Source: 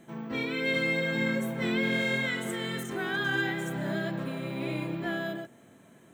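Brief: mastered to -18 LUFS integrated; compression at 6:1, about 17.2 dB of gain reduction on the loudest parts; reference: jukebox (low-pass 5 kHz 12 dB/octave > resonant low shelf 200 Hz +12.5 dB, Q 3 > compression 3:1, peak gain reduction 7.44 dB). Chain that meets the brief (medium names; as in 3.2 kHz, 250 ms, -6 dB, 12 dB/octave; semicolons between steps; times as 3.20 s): compression 6:1, threshold -44 dBFS; low-pass 5 kHz 12 dB/octave; resonant low shelf 200 Hz +12.5 dB, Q 3; compression 3:1, threshold -39 dBFS; trim +24 dB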